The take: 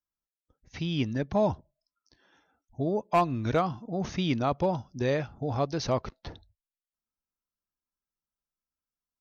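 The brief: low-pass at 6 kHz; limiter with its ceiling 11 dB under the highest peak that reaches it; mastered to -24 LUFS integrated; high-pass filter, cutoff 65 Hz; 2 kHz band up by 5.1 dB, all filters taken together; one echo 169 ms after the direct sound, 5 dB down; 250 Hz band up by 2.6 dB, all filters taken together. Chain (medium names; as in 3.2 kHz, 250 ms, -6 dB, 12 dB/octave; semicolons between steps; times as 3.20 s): high-pass 65 Hz; low-pass 6 kHz; peaking EQ 250 Hz +3.5 dB; peaking EQ 2 kHz +6.5 dB; peak limiter -22.5 dBFS; delay 169 ms -5 dB; trim +8.5 dB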